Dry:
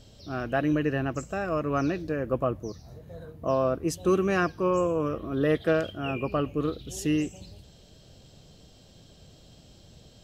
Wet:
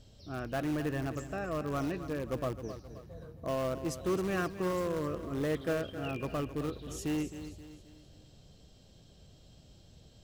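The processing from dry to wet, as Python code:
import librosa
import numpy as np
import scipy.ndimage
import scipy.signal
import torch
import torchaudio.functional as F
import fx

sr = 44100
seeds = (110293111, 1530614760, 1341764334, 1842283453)

p1 = fx.low_shelf(x, sr, hz=120.0, db=5.0)
p2 = (np.mod(10.0 ** (20.5 / 20.0) * p1 + 1.0, 2.0) - 1.0) / 10.0 ** (20.5 / 20.0)
p3 = p1 + (p2 * librosa.db_to_amplitude(-12.0))
p4 = fx.echo_feedback(p3, sr, ms=264, feedback_pct=43, wet_db=-12.0)
y = p4 * librosa.db_to_amplitude(-9.0)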